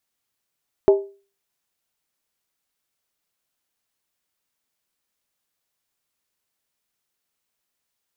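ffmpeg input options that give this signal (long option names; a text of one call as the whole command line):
ffmpeg -f lavfi -i "aevalsrc='0.447*pow(10,-3*t/0.36)*sin(2*PI*396*t)+0.158*pow(10,-3*t/0.285)*sin(2*PI*631.2*t)+0.0562*pow(10,-3*t/0.246)*sin(2*PI*845.9*t)+0.02*pow(10,-3*t/0.238)*sin(2*PI*909.2*t)+0.00708*pow(10,-3*t/0.221)*sin(2*PI*1050.6*t)':duration=0.63:sample_rate=44100" out.wav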